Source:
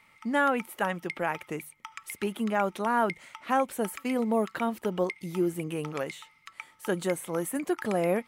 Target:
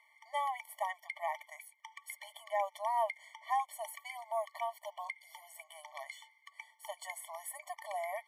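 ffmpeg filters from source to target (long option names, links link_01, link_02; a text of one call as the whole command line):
ffmpeg -i in.wav -af "afftfilt=real='re*eq(mod(floor(b*sr/1024/590),2),1)':imag='im*eq(mod(floor(b*sr/1024/590),2),1)':win_size=1024:overlap=0.75,volume=-4.5dB" out.wav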